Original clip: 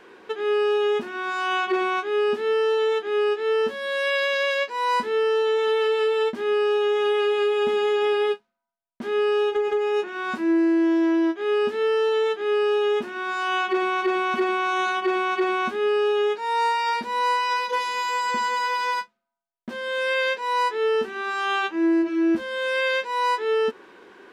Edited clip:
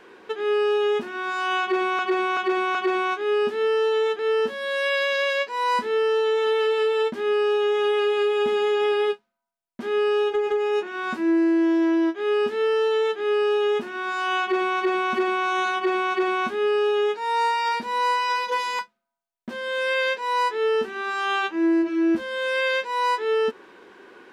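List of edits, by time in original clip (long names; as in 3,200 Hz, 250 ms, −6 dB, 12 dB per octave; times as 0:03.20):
0:01.61–0:01.99: repeat, 4 plays
0:03.05–0:03.40: remove
0:18.00–0:18.99: remove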